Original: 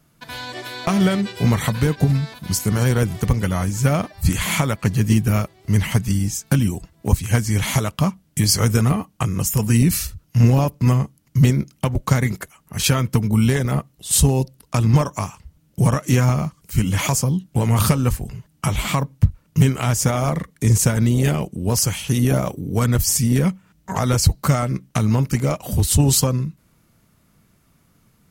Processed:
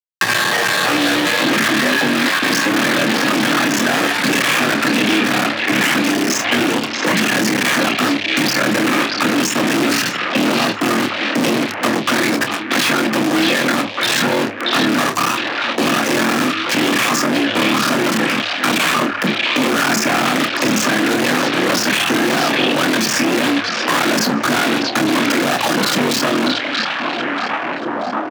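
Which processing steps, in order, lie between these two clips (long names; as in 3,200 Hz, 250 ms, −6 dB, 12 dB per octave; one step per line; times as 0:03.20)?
sub-harmonics by changed cycles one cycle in 3, muted
parametric band 1,100 Hz +10 dB 0.35 octaves
mains-hum notches 60/120/180/240/300 Hz
in parallel at −1.5 dB: compressor whose output falls as the input rises −26 dBFS, ratio −1
on the sum: loudspeaker in its box 210–5,400 Hz, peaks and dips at 310 Hz −6 dB, 1,100 Hz −6 dB, 1,600 Hz +9 dB, 2,600 Hz +4 dB
fuzz pedal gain 39 dB, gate −38 dBFS
frequency shifter +100 Hz
double-tracking delay 28 ms −10.5 dB
on a send: echo through a band-pass that steps 633 ms, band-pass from 3,000 Hz, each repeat −0.7 octaves, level −0.5 dB
on the sum: multiband upward and downward compressor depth 70%
level −2 dB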